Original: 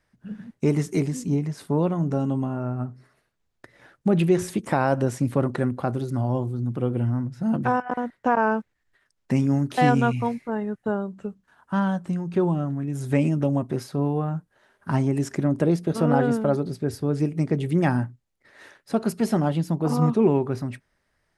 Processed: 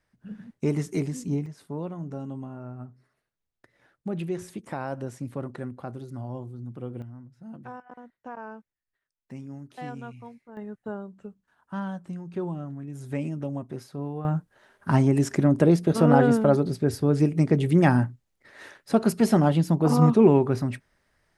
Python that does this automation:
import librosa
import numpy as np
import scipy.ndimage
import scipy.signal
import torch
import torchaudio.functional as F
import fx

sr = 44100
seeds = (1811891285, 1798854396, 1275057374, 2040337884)

y = fx.gain(x, sr, db=fx.steps((0.0, -4.0), (1.46, -11.0), (7.02, -18.5), (10.57, -9.0), (14.25, 2.5)))